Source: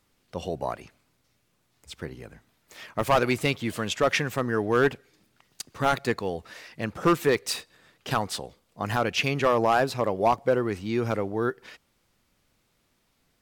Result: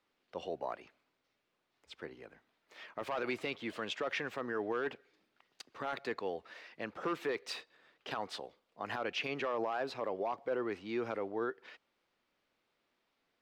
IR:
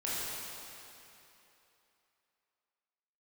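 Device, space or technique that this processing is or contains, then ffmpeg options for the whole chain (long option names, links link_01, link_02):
DJ mixer with the lows and highs turned down: -filter_complex "[0:a]acrossover=split=260 4600:gain=0.141 1 0.126[link_01][link_02][link_03];[link_01][link_02][link_03]amix=inputs=3:normalize=0,alimiter=limit=-20dB:level=0:latency=1:release=33,volume=-6.5dB"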